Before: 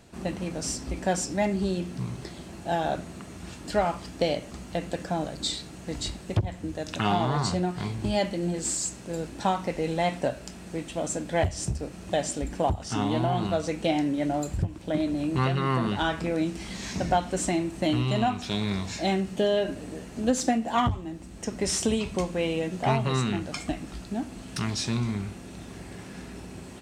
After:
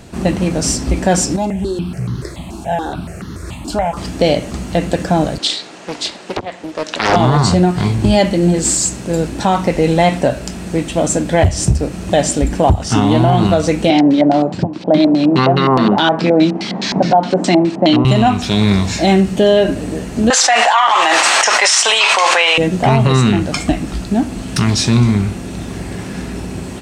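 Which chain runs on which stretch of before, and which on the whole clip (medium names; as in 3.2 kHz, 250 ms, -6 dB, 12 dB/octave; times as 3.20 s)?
1.36–3.97 s: compression 1.5:1, threshold -34 dBFS + stepped phaser 7 Hz 510–2400 Hz
5.38–7.16 s: band-pass 490–5900 Hz + loudspeaker Doppler distortion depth 0.78 ms
13.90–18.05 s: high-pass 160 Hz 24 dB/octave + LFO low-pass square 4.8 Hz 810–4500 Hz
20.30–22.58 s: high-pass 860 Hz 24 dB/octave + distance through air 81 m + level flattener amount 100%
whole clip: bass shelf 350 Hz +3.5 dB; loudness maximiser +15 dB; trim -1 dB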